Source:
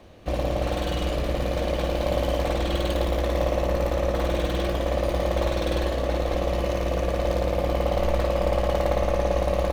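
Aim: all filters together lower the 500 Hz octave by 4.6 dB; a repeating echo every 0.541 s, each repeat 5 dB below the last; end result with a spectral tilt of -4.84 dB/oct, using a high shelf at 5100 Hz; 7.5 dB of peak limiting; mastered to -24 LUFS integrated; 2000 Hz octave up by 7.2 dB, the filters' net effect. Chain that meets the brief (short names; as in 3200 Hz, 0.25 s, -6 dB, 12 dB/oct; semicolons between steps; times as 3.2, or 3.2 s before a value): bell 500 Hz -6 dB; bell 2000 Hz +8 dB; high shelf 5100 Hz +6.5 dB; limiter -19 dBFS; feedback echo 0.541 s, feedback 56%, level -5 dB; gain +3.5 dB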